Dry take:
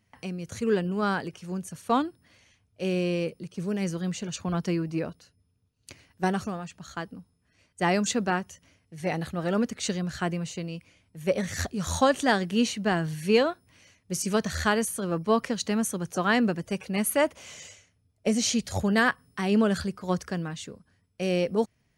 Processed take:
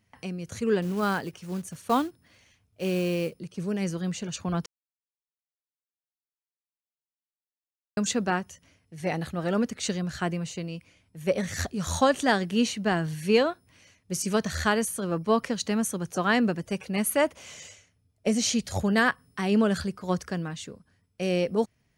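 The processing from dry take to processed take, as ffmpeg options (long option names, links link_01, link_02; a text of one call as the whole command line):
ffmpeg -i in.wav -filter_complex "[0:a]asettb=1/sr,asplit=3[link_01][link_02][link_03];[link_01]atrim=end=0.824[link_04];[link_02]atrim=start=0.82:end=3.37,asetpts=PTS-STARTPTS,afade=type=in:duration=0.004:curve=qsin,afade=type=out:start_time=2.546:duration=0.004:curve=qsin,acrusher=bits=5:mode=log:mix=0:aa=0.000001[link_05];[link_03]atrim=start=3.366[link_06];[link_04][link_05]acrossfade=duration=0.004:curve1=hsin:curve2=qsin[link_07];[link_07][link_06]acrossfade=duration=0.004:curve1=qsin:curve2=hsin,asplit=3[link_08][link_09][link_10];[link_08]atrim=end=4.66,asetpts=PTS-STARTPTS,afade=type=out:start_time=4.656:duration=0.004:curve=hsin[link_11];[link_09]atrim=start=4.66:end=7.97,asetpts=PTS-STARTPTS,volume=0[link_12];[link_10]atrim=start=7.97,asetpts=PTS-STARTPTS,afade=type=in:duration=0.004:curve=hsin[link_13];[link_11][link_12][link_13]concat=n=3:v=0:a=1" out.wav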